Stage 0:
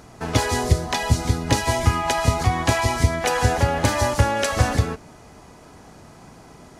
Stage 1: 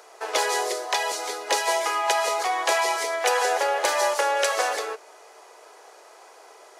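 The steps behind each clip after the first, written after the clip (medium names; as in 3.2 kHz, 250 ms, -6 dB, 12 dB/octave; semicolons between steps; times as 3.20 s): steep high-pass 400 Hz 48 dB/octave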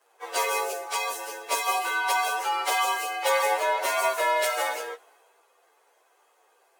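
frequency axis rescaled in octaves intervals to 112%; three bands expanded up and down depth 40%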